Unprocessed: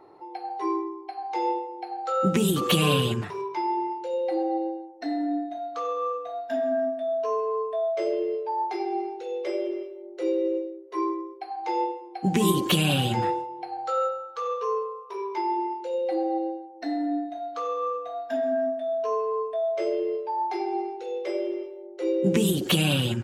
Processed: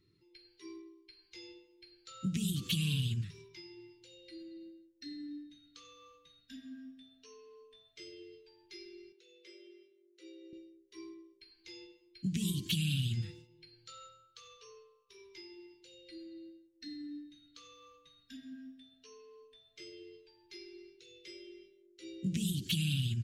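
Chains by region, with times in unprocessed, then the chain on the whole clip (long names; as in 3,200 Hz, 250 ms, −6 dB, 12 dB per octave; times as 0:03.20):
0:09.12–0:10.53: high-pass filter 400 Hz + high-shelf EQ 2,000 Hz −8.5 dB
whole clip: Chebyshev band-stop filter 130–4,100 Hz, order 2; high-shelf EQ 6,200 Hz −8.5 dB; downward compressor 2 to 1, threshold −33 dBFS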